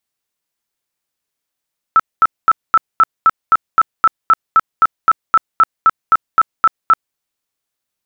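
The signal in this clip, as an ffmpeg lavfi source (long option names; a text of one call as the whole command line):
ffmpeg -f lavfi -i "aevalsrc='0.562*sin(2*PI*1320*mod(t,0.26))*lt(mod(t,0.26),47/1320)':duration=5.2:sample_rate=44100" out.wav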